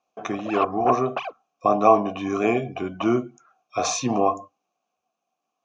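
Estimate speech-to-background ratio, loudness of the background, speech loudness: 7.5 dB, -31.0 LUFS, -23.5 LUFS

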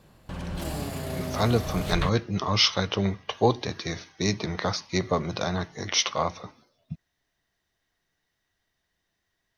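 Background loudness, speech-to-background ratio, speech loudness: -33.5 LUFS, 7.0 dB, -26.5 LUFS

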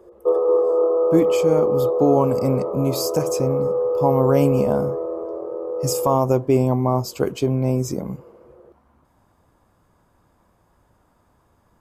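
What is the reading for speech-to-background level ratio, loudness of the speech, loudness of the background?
-0.5 dB, -22.0 LUFS, -21.5 LUFS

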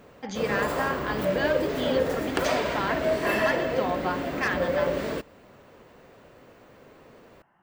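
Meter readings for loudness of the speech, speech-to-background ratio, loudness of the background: -31.5 LUFS, -4.0 dB, -27.5 LUFS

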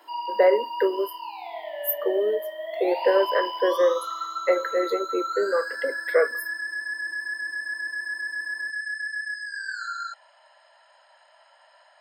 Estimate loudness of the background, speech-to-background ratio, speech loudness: -31.0 LUFS, 6.0 dB, -25.0 LUFS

